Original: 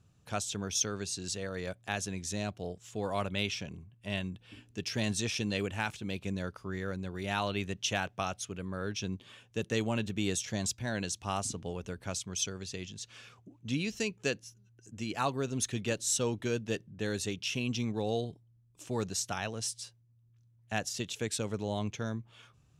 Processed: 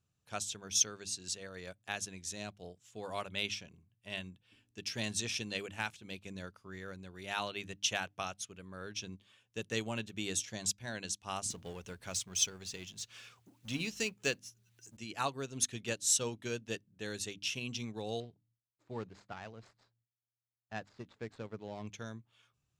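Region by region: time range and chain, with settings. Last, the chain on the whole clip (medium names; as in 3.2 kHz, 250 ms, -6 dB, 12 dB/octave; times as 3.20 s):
11.50–14.97 s: companding laws mixed up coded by mu + tape noise reduction on one side only encoder only
18.20–21.87 s: median filter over 15 samples + gate with hold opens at -58 dBFS, closes at -63 dBFS + distance through air 120 m
whole clip: tilt shelf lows -3 dB, about 1.2 kHz; hum notches 50/100/150/200/250/300 Hz; upward expansion 1.5:1, over -51 dBFS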